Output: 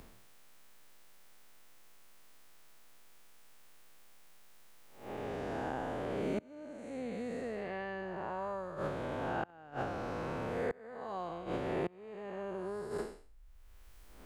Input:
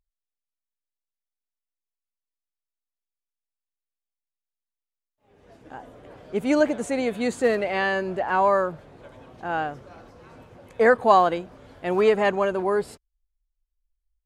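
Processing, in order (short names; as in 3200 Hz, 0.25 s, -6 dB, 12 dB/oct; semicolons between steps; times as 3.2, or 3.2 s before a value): time blur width 0.28 s; flipped gate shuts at -23 dBFS, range -29 dB; three-band squash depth 100%; gain +7 dB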